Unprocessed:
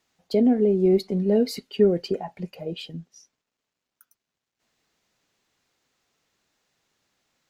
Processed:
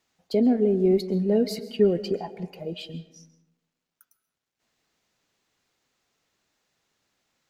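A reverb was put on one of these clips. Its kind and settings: algorithmic reverb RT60 1 s, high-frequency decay 0.45×, pre-delay 95 ms, DRR 14.5 dB; trim -1.5 dB

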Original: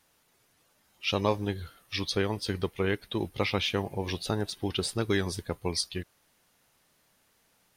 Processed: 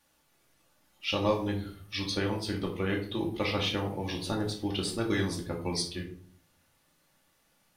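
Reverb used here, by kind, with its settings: simulated room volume 490 m³, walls furnished, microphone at 2.4 m; trim -4.5 dB

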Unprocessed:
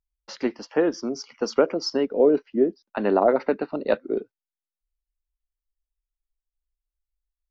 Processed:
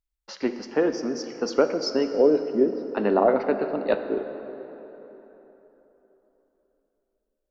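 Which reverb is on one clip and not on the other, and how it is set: plate-style reverb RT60 3.8 s, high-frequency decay 0.6×, DRR 7.5 dB; trim -1 dB

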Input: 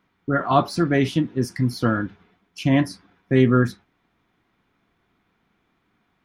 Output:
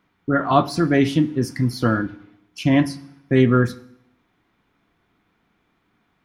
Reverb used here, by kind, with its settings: FDN reverb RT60 0.7 s, low-frequency decay 1.25×, high-frequency decay 1×, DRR 15 dB; trim +1.5 dB

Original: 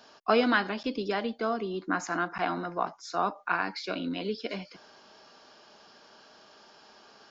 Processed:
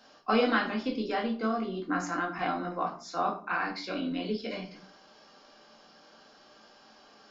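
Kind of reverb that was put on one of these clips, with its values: simulated room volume 320 m³, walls furnished, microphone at 2.1 m; trim -5 dB

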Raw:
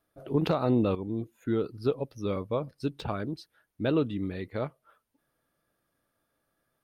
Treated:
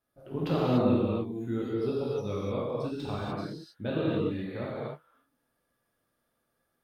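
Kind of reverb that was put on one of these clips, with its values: gated-style reverb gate 320 ms flat, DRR -7.5 dB; trim -8.5 dB

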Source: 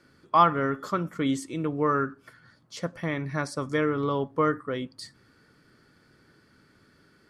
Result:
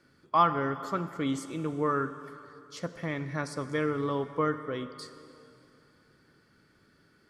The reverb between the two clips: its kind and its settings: plate-style reverb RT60 2.8 s, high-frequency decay 0.9×, DRR 11 dB; trim -4 dB

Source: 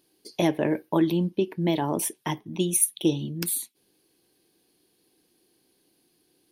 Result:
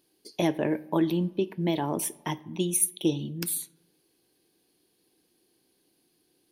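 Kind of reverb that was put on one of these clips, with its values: algorithmic reverb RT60 1.1 s, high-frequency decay 0.5×, pre-delay 0 ms, DRR 19.5 dB; trim -2.5 dB

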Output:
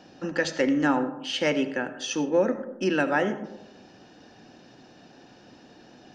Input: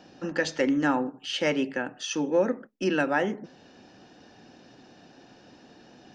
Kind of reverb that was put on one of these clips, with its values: algorithmic reverb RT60 0.98 s, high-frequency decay 0.3×, pre-delay 40 ms, DRR 12 dB; trim +1 dB

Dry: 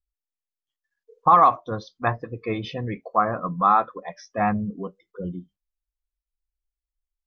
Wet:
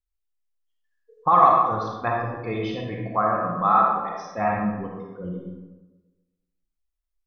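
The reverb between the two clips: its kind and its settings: algorithmic reverb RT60 1.2 s, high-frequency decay 0.55×, pre-delay 10 ms, DRR -1.5 dB; trim -3.5 dB

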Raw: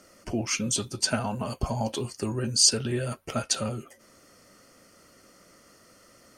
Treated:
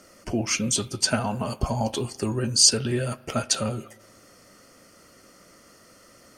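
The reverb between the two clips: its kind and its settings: spring tank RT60 1.3 s, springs 37 ms, chirp 75 ms, DRR 19 dB; trim +3 dB

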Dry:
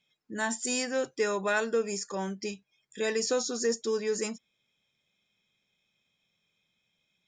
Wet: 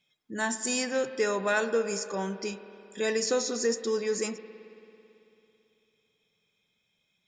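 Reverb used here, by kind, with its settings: spring tank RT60 3 s, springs 55 ms, chirp 25 ms, DRR 11.5 dB; trim +1 dB

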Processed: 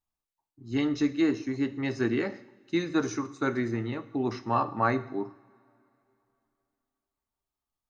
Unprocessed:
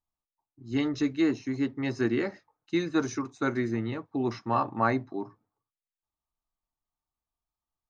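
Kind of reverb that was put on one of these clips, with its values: two-slope reverb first 0.67 s, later 3.1 s, from -21 dB, DRR 11.5 dB

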